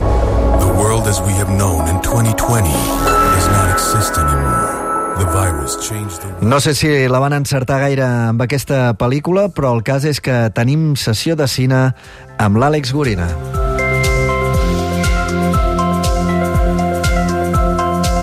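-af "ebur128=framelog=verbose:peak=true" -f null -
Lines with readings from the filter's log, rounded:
Integrated loudness:
  I:         -14.7 LUFS
  Threshold: -24.8 LUFS
Loudness range:
  LRA:         1.9 LU
  Threshold: -34.8 LUFS
  LRA low:   -15.5 LUFS
  LRA high:  -13.6 LUFS
True peak:
  Peak:       -3.3 dBFS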